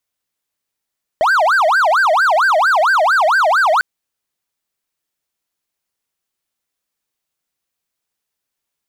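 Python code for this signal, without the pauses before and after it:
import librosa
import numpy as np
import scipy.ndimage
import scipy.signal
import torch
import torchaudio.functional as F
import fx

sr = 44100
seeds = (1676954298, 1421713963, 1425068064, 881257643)

y = fx.siren(sr, length_s=2.6, kind='wail', low_hz=613.0, high_hz=1590.0, per_s=4.4, wave='triangle', level_db=-8.0)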